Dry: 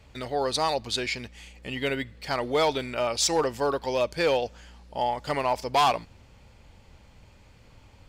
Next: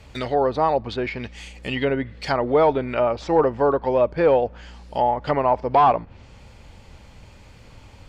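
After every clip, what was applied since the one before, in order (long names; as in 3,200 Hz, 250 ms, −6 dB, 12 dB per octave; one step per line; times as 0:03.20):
treble cut that deepens with the level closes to 1,200 Hz, closed at −25 dBFS
level +7.5 dB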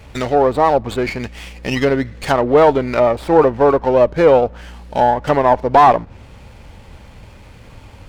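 windowed peak hold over 5 samples
level +6.5 dB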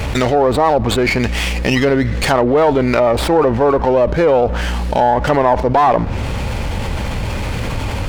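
envelope flattener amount 70%
level −3.5 dB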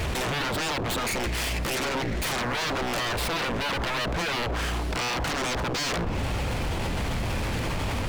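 wave folding −18.5 dBFS
level −4.5 dB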